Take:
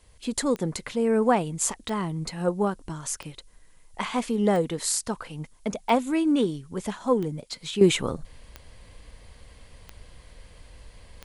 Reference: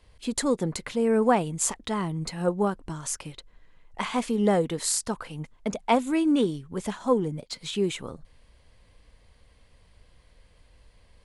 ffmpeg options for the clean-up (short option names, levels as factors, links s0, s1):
-af "adeclick=t=4,agate=range=0.0891:threshold=0.00708,asetnsamples=n=441:p=0,asendcmd='7.81 volume volume -9dB',volume=1"